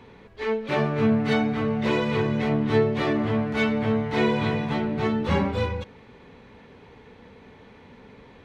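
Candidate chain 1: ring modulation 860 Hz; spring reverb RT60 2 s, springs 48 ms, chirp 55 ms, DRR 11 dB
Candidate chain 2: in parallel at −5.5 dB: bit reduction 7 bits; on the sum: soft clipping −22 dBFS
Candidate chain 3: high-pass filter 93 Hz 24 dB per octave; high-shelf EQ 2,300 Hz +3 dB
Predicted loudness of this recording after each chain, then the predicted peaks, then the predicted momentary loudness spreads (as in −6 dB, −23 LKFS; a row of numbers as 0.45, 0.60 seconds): −26.5, −26.0, −24.0 LKFS; −9.5, −22.0, −9.5 dBFS; 7, 4, 6 LU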